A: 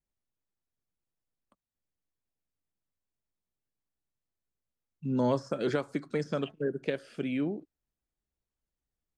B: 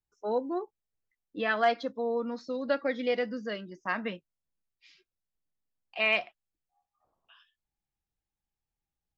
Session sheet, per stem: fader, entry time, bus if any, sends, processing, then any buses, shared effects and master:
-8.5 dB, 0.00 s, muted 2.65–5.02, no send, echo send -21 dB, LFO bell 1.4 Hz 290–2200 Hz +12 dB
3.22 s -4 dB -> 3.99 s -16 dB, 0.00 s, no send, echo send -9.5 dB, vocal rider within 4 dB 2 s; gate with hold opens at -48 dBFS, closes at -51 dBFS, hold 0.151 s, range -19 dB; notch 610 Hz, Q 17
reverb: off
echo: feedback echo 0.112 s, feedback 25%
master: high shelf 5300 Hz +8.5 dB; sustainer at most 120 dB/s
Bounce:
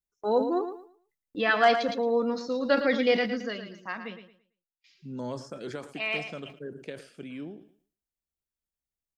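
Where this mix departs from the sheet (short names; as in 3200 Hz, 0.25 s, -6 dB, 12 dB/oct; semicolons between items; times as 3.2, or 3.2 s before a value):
stem A: missing LFO bell 1.4 Hz 290–2200 Hz +12 dB; stem B -4.0 dB -> +3.5 dB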